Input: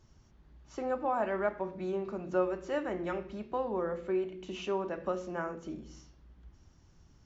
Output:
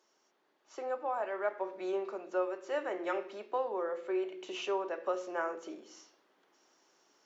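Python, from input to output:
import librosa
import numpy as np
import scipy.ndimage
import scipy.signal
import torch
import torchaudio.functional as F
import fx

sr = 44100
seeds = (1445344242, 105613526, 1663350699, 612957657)

y = scipy.signal.sosfilt(scipy.signal.butter(4, 380.0, 'highpass', fs=sr, output='sos'), x)
y = fx.rider(y, sr, range_db=10, speed_s=0.5)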